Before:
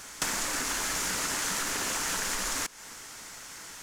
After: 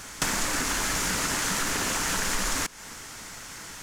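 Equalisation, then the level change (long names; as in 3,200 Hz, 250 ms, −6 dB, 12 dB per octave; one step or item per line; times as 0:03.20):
bass and treble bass +6 dB, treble −2 dB
+4.0 dB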